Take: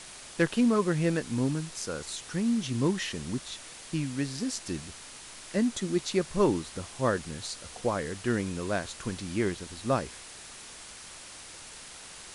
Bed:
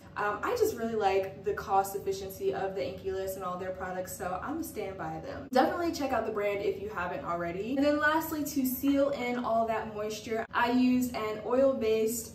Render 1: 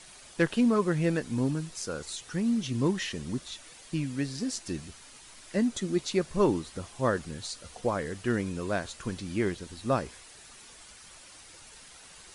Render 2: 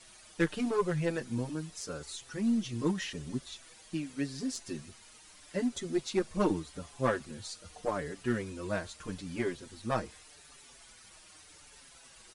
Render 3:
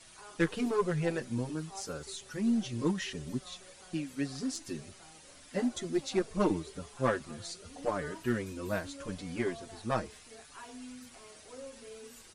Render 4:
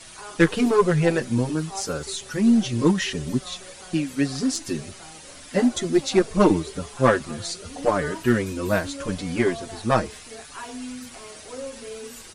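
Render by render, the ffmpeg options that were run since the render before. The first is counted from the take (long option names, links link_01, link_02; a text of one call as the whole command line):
ffmpeg -i in.wav -af "afftdn=noise_reduction=8:noise_floor=-47" out.wav
ffmpeg -i in.wav -filter_complex "[0:a]aeval=exprs='0.282*(cos(1*acos(clip(val(0)/0.282,-1,1)))-cos(1*PI/2))+0.0891*(cos(2*acos(clip(val(0)/0.282,-1,1)))-cos(2*PI/2))+0.00708*(cos(7*acos(clip(val(0)/0.282,-1,1)))-cos(7*PI/2))+0.00501*(cos(8*acos(clip(val(0)/0.282,-1,1)))-cos(8*PI/2))':channel_layout=same,asplit=2[link_01][link_02];[link_02]adelay=5.7,afreqshift=-0.82[link_03];[link_01][link_03]amix=inputs=2:normalize=1" out.wav
ffmpeg -i in.wav -i bed.wav -filter_complex "[1:a]volume=-21.5dB[link_01];[0:a][link_01]amix=inputs=2:normalize=0" out.wav
ffmpeg -i in.wav -af "volume=11.5dB" out.wav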